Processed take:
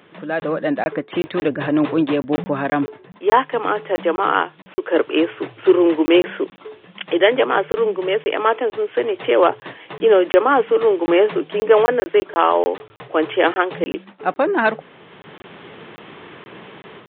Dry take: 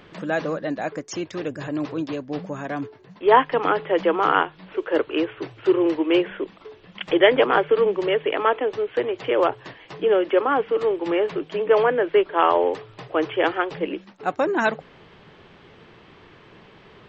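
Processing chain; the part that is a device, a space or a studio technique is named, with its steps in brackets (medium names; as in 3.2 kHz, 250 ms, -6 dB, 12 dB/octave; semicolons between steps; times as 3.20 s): call with lost packets (high-pass 160 Hz 12 dB/octave; resampled via 8 kHz; level rider; lost packets of 20 ms random); trim -1 dB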